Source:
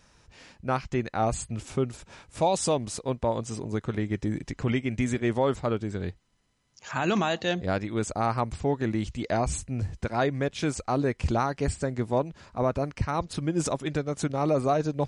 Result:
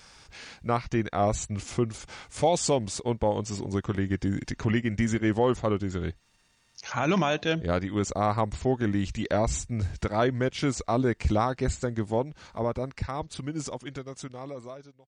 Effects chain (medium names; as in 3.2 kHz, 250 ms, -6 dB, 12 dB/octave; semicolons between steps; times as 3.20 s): fade out at the end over 3.73 s; pitch shift -1.5 st; tape noise reduction on one side only encoder only; trim +1 dB